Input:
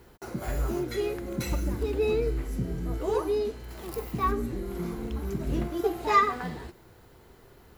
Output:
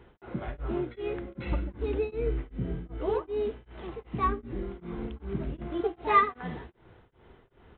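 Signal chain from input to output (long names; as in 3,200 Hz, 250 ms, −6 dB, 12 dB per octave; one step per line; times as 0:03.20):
downsampling to 8,000 Hz
tremolo along a rectified sine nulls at 2.6 Hz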